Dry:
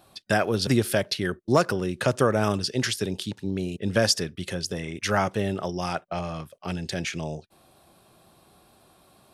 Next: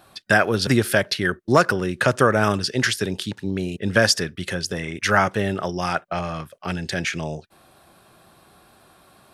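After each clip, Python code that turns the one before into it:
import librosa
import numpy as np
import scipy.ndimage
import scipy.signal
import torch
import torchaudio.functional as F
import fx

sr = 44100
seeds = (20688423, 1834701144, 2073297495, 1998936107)

y = fx.peak_eq(x, sr, hz=1600.0, db=7.0, octaves=0.98)
y = F.gain(torch.from_numpy(y), 3.0).numpy()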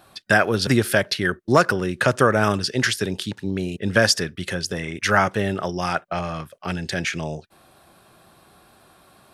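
y = x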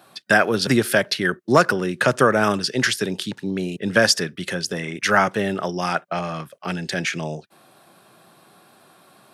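y = scipy.signal.sosfilt(scipy.signal.butter(4, 130.0, 'highpass', fs=sr, output='sos'), x)
y = F.gain(torch.from_numpy(y), 1.0).numpy()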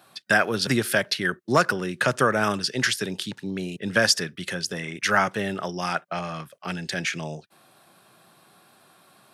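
y = fx.peak_eq(x, sr, hz=380.0, db=-4.0, octaves=2.7)
y = F.gain(torch.from_numpy(y), -2.0).numpy()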